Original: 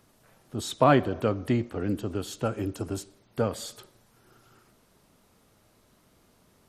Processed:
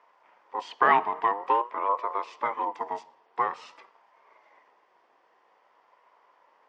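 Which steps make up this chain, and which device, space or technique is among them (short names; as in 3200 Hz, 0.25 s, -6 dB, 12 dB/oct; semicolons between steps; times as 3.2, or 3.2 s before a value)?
voice changer toy (ring modulator with a swept carrier 670 Hz, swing 20%, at 0.49 Hz; speaker cabinet 450–4400 Hz, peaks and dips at 460 Hz +3 dB, 1000 Hz +10 dB, 1900 Hz +5 dB, 4000 Hz -10 dB)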